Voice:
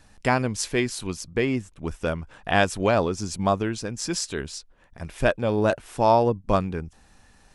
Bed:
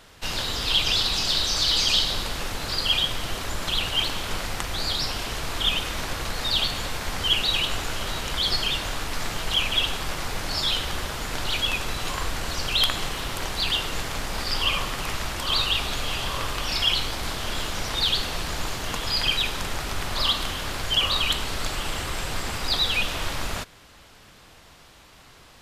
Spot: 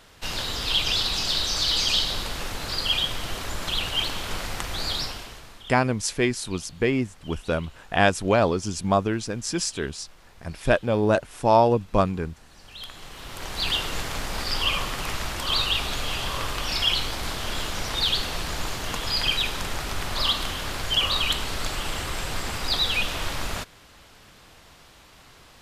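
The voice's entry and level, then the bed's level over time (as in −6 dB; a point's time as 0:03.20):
5.45 s, +1.0 dB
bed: 0:04.99 −1.5 dB
0:05.77 −24.5 dB
0:12.51 −24.5 dB
0:13.67 −0.5 dB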